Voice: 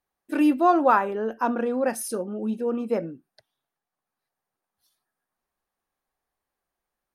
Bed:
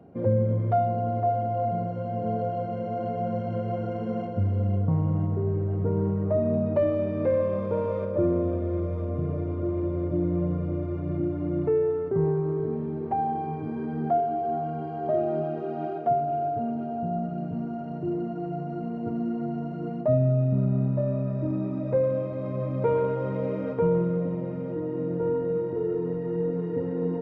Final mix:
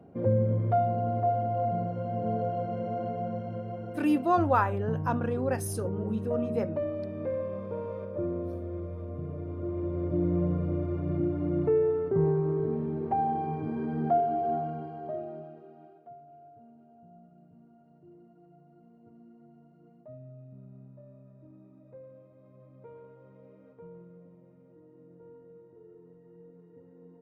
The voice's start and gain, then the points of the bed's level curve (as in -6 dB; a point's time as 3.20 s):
3.65 s, -5.5 dB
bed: 2.89 s -2 dB
3.76 s -8.5 dB
9.32 s -8.5 dB
10.29 s -1 dB
14.53 s -1 dB
16.07 s -25.5 dB